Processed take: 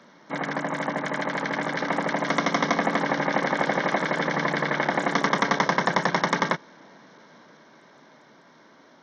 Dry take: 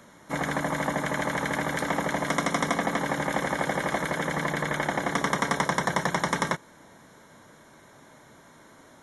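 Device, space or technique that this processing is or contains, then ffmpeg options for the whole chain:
Bluetooth headset: -af "highpass=frequency=160:width=0.5412,highpass=frequency=160:width=1.3066,dynaudnorm=framelen=250:gausssize=17:maxgain=4dB,aresample=16000,aresample=44100" -ar 48000 -c:a sbc -b:a 64k

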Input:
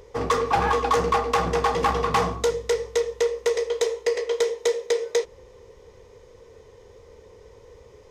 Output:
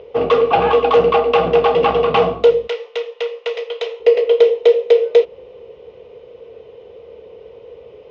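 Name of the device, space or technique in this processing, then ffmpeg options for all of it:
guitar cabinet: -filter_complex "[0:a]asettb=1/sr,asplit=3[link_01][link_02][link_03];[link_01]atrim=end=2.674[link_04];[link_02]atrim=start=2.67:end=4,asetpts=PTS-STARTPTS,afade=type=in:duration=0.004:curve=qsin,afade=type=out:start_time=1.326:duration=0.004:curve=qsin,highpass=940[link_05];[link_03]atrim=start=3.996[link_06];[link_04][link_05]acrossfade=duration=0.004:curve1=hsin:curve2=qsin[link_07];[link_07][link_06]acrossfade=duration=0.004:curve1=qsin:curve2=hsin,highpass=99,equalizer=frequency=99:width_type=q:width=4:gain=-7,equalizer=frequency=470:width_type=q:width=4:gain=6,equalizer=frequency=660:width_type=q:width=4:gain=8,equalizer=frequency=1000:width_type=q:width=4:gain=-5,equalizer=frequency=1800:width_type=q:width=4:gain=-9,equalizer=frequency=2800:width_type=q:width=4:gain=9,lowpass=frequency=3500:width=0.5412,lowpass=frequency=3500:width=1.3066,volume=5.5dB"

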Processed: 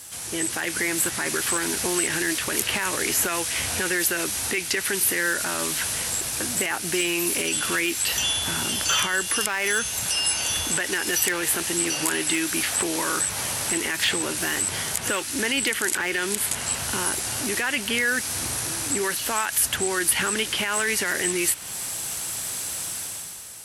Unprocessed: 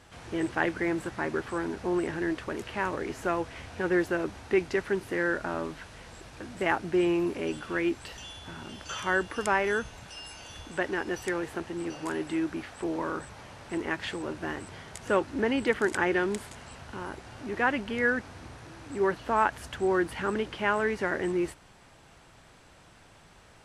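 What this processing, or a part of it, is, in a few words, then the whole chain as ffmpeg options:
FM broadcast chain: -filter_complex "[0:a]highpass=66,dynaudnorm=framelen=100:gausssize=13:maxgain=11.5dB,acrossover=split=1700|3500[link_01][link_02][link_03];[link_01]acompressor=threshold=-29dB:ratio=4[link_04];[link_02]acompressor=threshold=-27dB:ratio=4[link_05];[link_03]acompressor=threshold=-50dB:ratio=4[link_06];[link_04][link_05][link_06]amix=inputs=3:normalize=0,aemphasis=mode=production:type=75fm,alimiter=limit=-18dB:level=0:latency=1:release=22,asoftclip=type=hard:threshold=-20dB,lowpass=frequency=15000:width=0.5412,lowpass=frequency=15000:width=1.3066,aemphasis=mode=production:type=75fm,volume=2.5dB"

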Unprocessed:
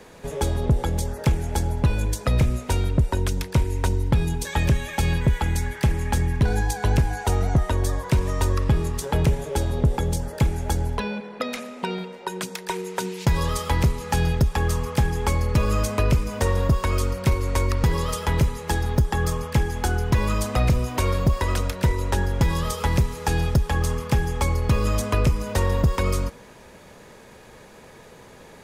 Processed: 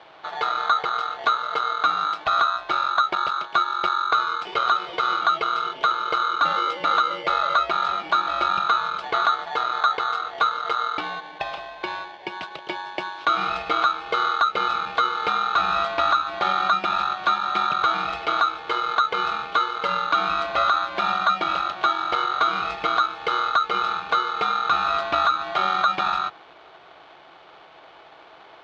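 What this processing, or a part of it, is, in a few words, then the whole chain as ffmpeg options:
ring modulator pedal into a guitar cabinet: -af "aeval=exprs='val(0)*sgn(sin(2*PI*1300*n/s))':channel_layout=same,highpass=97,equalizer=frequency=99:width_type=q:width=4:gain=-10,equalizer=frequency=230:width_type=q:width=4:gain=-9,equalizer=frequency=640:width_type=q:width=4:gain=8,equalizer=frequency=1800:width_type=q:width=4:gain=-9,lowpass=frequency=3500:width=0.5412,lowpass=frequency=3500:width=1.3066"

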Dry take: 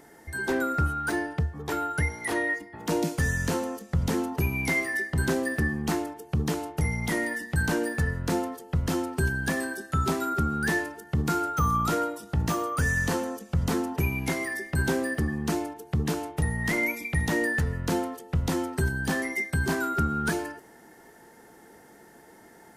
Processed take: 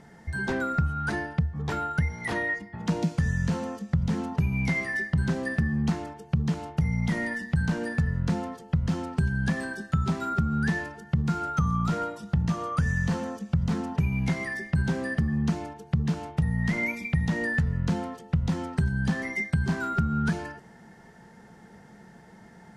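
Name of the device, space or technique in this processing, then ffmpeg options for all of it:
jukebox: -af "lowpass=5800,lowshelf=frequency=240:width_type=q:width=3:gain=6.5,acompressor=threshold=-22dB:ratio=4"

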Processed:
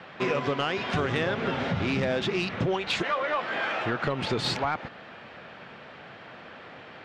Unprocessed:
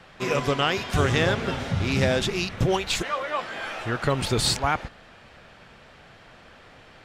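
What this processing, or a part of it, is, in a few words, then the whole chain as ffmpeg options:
AM radio: -af "highpass=150,lowpass=3300,acompressor=threshold=-28dB:ratio=6,asoftclip=type=tanh:threshold=-22.5dB,lowpass=12000,volume=5.5dB"

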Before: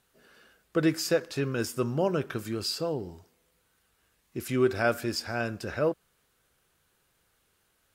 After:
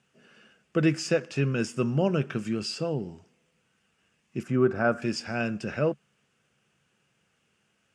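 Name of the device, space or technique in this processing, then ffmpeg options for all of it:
car door speaker: -filter_complex "[0:a]asettb=1/sr,asplit=3[link_01][link_02][link_03];[link_01]atrim=end=4.434[link_04];[link_02]atrim=start=4.43:end=5.02,asetpts=PTS-STARTPTS,afade=type=in:duration=0.004:curve=qsin,afade=type=out:start_time=0.586:duration=0.004:curve=qsin,highshelf=frequency=1900:width_type=q:width=1.5:gain=-11[link_05];[link_03]atrim=start=5.016[link_06];[link_04][link_05]acrossfade=duration=0.004:curve1=hsin:curve2=qsin[link_07];[link_07][link_06]acrossfade=duration=0.004:curve1=qsin:curve2=hsin,highpass=100,equalizer=frequency=140:width_type=q:width=4:gain=8,equalizer=frequency=210:width_type=q:width=4:gain=9,equalizer=frequency=1000:width_type=q:width=4:gain=-3,equalizer=frequency=2700:width_type=q:width=4:gain=8,equalizer=frequency=4000:width_type=q:width=4:gain=-9,lowpass=frequency=8000:width=0.5412,lowpass=frequency=8000:width=1.3066"

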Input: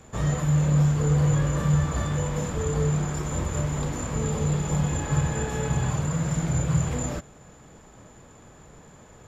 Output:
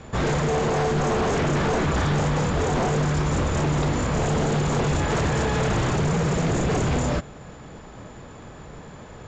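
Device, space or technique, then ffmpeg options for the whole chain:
synthesiser wavefolder: -af "aeval=exprs='0.0531*(abs(mod(val(0)/0.0531+3,4)-2)-1)':channel_layout=same,lowpass=frequency=5700:width=0.5412,lowpass=frequency=5700:width=1.3066,volume=8.5dB"

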